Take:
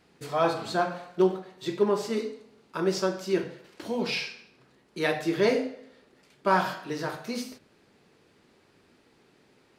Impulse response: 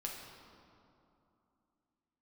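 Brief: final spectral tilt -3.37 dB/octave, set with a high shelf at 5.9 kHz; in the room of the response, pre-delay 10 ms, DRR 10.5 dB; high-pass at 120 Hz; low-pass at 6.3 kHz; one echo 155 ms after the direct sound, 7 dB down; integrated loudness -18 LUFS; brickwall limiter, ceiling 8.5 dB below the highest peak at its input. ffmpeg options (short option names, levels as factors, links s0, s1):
-filter_complex "[0:a]highpass=120,lowpass=6300,highshelf=f=5900:g=8,alimiter=limit=0.141:level=0:latency=1,aecho=1:1:155:0.447,asplit=2[s0][s1];[1:a]atrim=start_sample=2205,adelay=10[s2];[s1][s2]afir=irnorm=-1:irlink=0,volume=0.316[s3];[s0][s3]amix=inputs=2:normalize=0,volume=3.76"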